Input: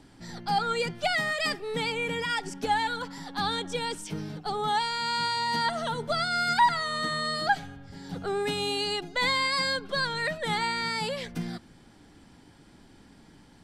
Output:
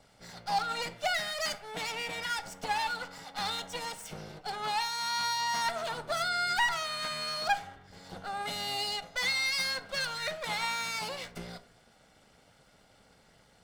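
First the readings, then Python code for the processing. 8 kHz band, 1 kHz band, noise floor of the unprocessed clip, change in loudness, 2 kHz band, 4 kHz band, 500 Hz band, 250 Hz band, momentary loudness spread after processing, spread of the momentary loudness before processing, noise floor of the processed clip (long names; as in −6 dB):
+1.5 dB, −5.0 dB, −55 dBFS, −4.0 dB, −3.5 dB, −2.5 dB, −8.0 dB, −12.5 dB, 14 LU, 11 LU, −63 dBFS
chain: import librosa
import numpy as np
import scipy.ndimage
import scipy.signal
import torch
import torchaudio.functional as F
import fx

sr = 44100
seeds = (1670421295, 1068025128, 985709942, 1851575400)

y = fx.lower_of_two(x, sr, delay_ms=1.4)
y = fx.low_shelf(y, sr, hz=300.0, db=-8.5)
y = fx.rev_plate(y, sr, seeds[0], rt60_s=0.59, hf_ratio=0.5, predelay_ms=0, drr_db=11.0)
y = F.gain(torch.from_numpy(y), -2.5).numpy()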